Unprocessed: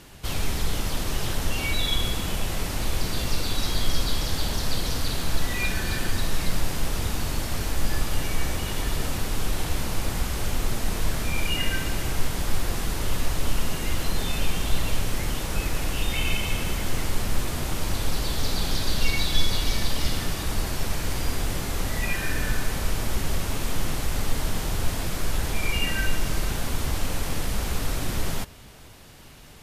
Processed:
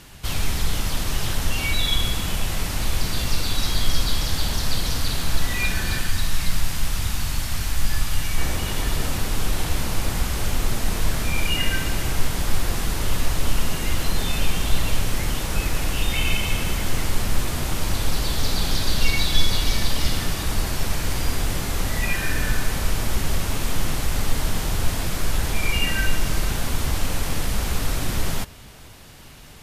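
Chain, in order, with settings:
parametric band 420 Hz −5 dB 1.8 octaves, from 0:06.01 −12 dB, from 0:08.38 −2 dB
level +3.5 dB

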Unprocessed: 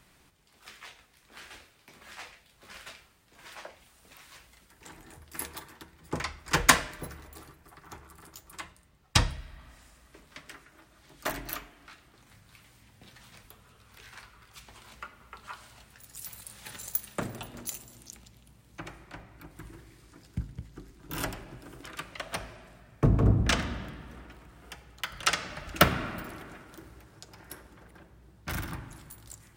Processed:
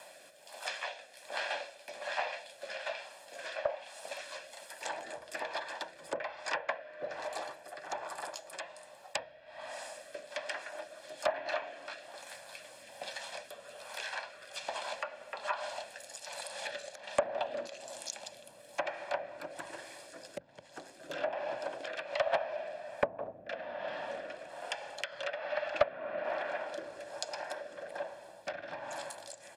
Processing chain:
treble cut that deepens with the level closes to 2,600 Hz, closed at −29.5 dBFS
high-shelf EQ 5,500 Hz +5.5 dB
notch filter 6,000 Hz, Q 21
comb filter 1.2 ms, depth 58%
downward compressor 12 to 1, threshold −41 dBFS, peak gain reduction 28 dB
high-pass with resonance 570 Hz, resonance Q 6.8
treble cut that deepens with the level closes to 3,000 Hz, closed at −39 dBFS
rotating-speaker cabinet horn 1.2 Hz
highs frequency-modulated by the lows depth 0.32 ms
level +10 dB

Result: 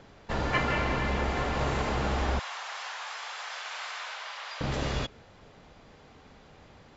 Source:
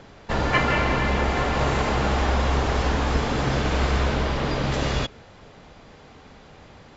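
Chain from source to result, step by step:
0:02.39–0:04.61: Bessel high-pass filter 1,200 Hz, order 6
level −6.5 dB

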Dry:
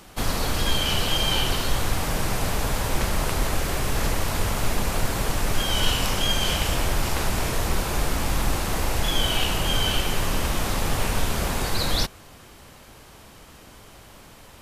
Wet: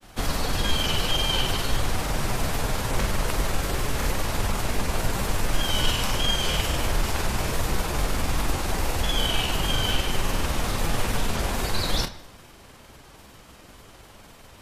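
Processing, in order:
granular cloud 100 ms, spray 22 ms, pitch spread up and down by 0 semitones
on a send: Butterworth low-pass 6,000 Hz + convolution reverb RT60 0.85 s, pre-delay 42 ms, DRR 14 dB

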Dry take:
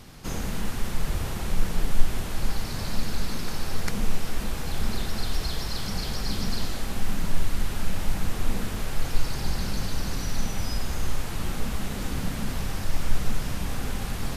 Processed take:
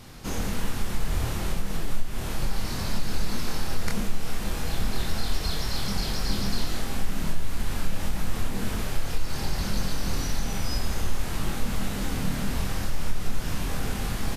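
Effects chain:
downward compressor 4 to 1, threshold −19 dBFS, peak gain reduction 11 dB
double-tracking delay 25 ms −3 dB

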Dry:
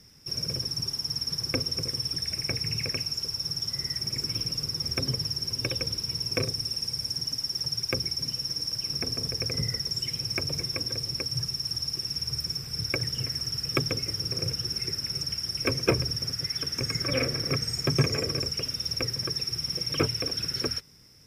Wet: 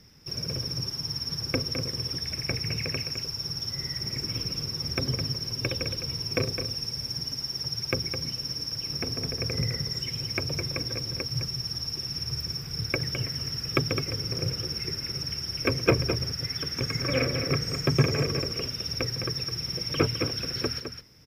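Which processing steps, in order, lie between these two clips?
parametric band 9,100 Hz −12 dB 1 octave
on a send: single-tap delay 210 ms −8 dB
on the sum: level +2 dB

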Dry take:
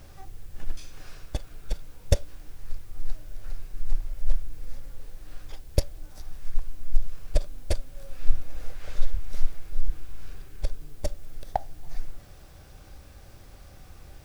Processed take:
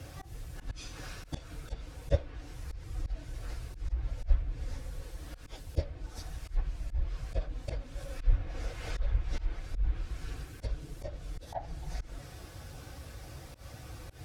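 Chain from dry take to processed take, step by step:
random phases in long frames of 50 ms
high-pass filter 53 Hz 12 dB per octave
treble cut that deepens with the level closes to 2,600 Hz, closed at −26 dBFS
notch comb filter 200 Hz
volume swells 120 ms
level +5.5 dB

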